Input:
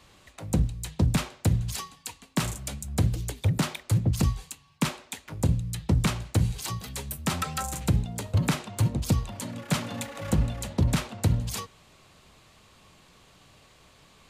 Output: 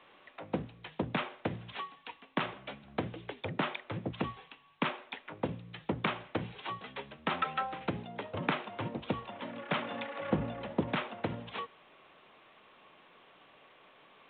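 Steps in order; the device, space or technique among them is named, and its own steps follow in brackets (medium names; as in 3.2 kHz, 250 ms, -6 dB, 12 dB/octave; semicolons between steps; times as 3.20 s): 10.30–10.81 s: tilt EQ -2 dB/octave; telephone (band-pass 340–3100 Hz; A-law 64 kbps 8 kHz)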